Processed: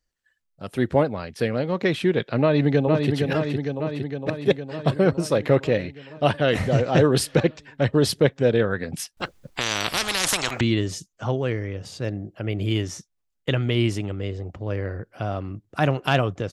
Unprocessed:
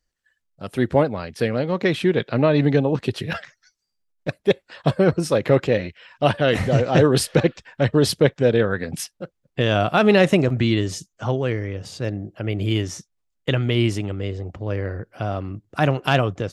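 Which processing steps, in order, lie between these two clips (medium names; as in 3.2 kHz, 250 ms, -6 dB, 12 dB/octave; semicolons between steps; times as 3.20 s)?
2.41–3.12 s: echo throw 460 ms, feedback 70%, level -4.5 dB; 9.17–10.61 s: spectrum-flattening compressor 10:1; trim -2 dB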